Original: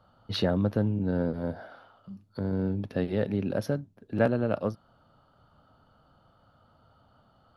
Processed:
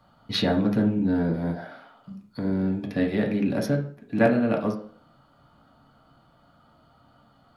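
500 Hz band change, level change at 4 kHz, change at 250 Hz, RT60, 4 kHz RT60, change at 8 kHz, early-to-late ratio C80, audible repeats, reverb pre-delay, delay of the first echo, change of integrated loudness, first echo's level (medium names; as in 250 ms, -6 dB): +2.5 dB, +6.0 dB, +6.0 dB, 0.45 s, 0.40 s, no reading, 15.0 dB, no echo, 3 ms, no echo, +4.0 dB, no echo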